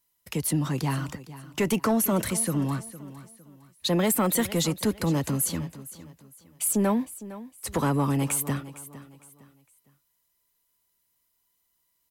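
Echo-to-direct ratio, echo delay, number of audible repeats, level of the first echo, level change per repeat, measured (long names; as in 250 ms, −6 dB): −15.5 dB, 458 ms, 2, −16.0 dB, −10.0 dB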